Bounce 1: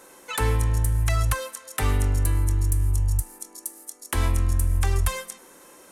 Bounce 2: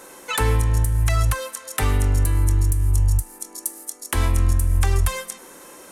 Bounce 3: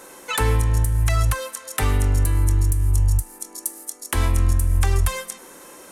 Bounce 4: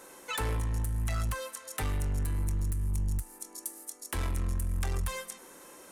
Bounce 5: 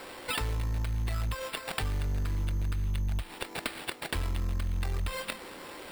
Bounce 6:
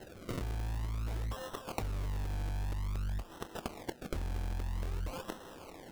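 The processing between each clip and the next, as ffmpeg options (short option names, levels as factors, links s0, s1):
-af "alimiter=limit=0.158:level=0:latency=1:release=375,volume=2.11"
-af anull
-af "asoftclip=type=tanh:threshold=0.126,volume=0.398"
-filter_complex "[0:a]acrossover=split=140|3000[s0][s1][s2];[s1]acompressor=threshold=0.0126:ratio=6[s3];[s0][s3][s2]amix=inputs=3:normalize=0,acrusher=samples=7:mix=1:aa=0.000001,acompressor=threshold=0.0158:ratio=4,volume=2.24"
-af "acrusher=samples=37:mix=1:aa=0.000001:lfo=1:lforange=37:lforate=0.51,volume=0.531"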